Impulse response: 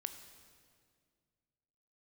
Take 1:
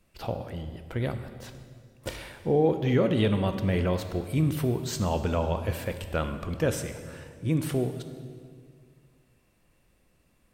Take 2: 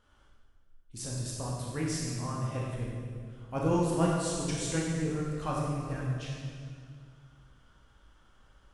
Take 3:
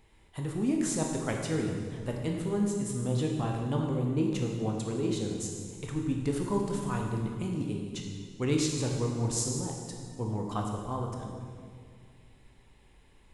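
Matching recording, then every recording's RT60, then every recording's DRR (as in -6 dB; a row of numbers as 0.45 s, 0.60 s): 1; 2.0 s, 2.0 s, 2.0 s; 8.0 dB, -4.0 dB, 0.5 dB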